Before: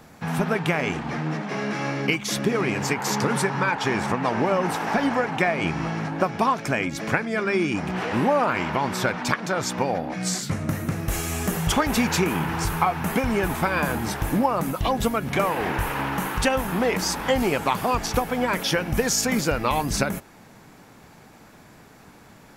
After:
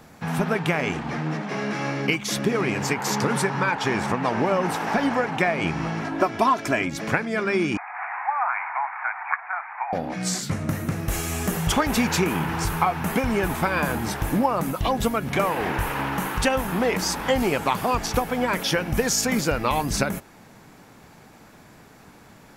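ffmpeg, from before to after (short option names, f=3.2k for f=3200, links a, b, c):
-filter_complex "[0:a]asettb=1/sr,asplit=3[a][b][c];[a]atrim=end=6.014[d];[b]atrim=start=6.01:end=6.82,asetpts=PTS-STARTPTS,afade=t=in:d=0.004:c=qsin,afade=t=out:st=0.806:d=0.004:c=qsin,aecho=1:1:3:0.65,atrim=end_sample=35721[e];[c]atrim=start=6.816[f];[d][e]acrossfade=d=0.004:c1=hsin:c2=qsin[g];[g][f]acrossfade=d=0.004:c1=qsin:c2=hsin,asettb=1/sr,asplit=3[h][i][j];[h]atrim=end=7.774[k];[i]atrim=start=7.77:end=9.93,asetpts=PTS-STARTPTS,afade=t=in:d=0.004:c=qsin,afade=t=out:st=2.156:d=0.004:c=qsin,asuperpass=centerf=1300:order=20:qfactor=0.77[l];[j]atrim=start=9.926[m];[k][l]acrossfade=d=0.004:c1=hsin:c2=qsin[n];[n][m]acrossfade=d=0.004:c1=qsin:c2=hsin"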